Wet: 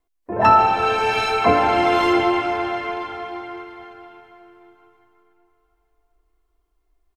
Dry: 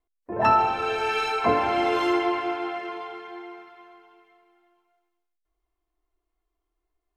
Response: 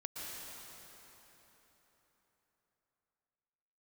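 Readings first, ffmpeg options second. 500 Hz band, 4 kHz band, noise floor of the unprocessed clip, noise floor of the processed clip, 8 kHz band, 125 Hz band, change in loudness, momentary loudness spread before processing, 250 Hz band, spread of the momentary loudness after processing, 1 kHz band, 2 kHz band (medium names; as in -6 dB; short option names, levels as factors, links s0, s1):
+5.5 dB, +6.0 dB, -81 dBFS, -71 dBFS, no reading, +7.5 dB, +6.0 dB, 18 LU, +5.5 dB, 17 LU, +6.5 dB, +6.0 dB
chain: -filter_complex "[0:a]asplit=2[s0][s1];[s1]adelay=699.7,volume=0.178,highshelf=f=4000:g=-15.7[s2];[s0][s2]amix=inputs=2:normalize=0,asplit=2[s3][s4];[s4]asubboost=boost=6:cutoff=160[s5];[1:a]atrim=start_sample=2205,adelay=10[s6];[s5][s6]afir=irnorm=-1:irlink=0,volume=0.398[s7];[s3][s7]amix=inputs=2:normalize=0,volume=1.88"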